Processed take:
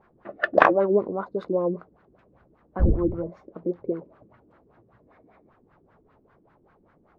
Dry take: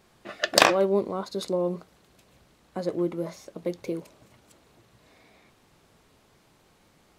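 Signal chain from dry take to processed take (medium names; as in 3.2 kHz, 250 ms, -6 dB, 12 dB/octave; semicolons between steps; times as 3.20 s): 2.79–3.28 s: wind noise 91 Hz -27 dBFS; LFO low-pass sine 5.1 Hz 310–1600 Hz; trim -1 dB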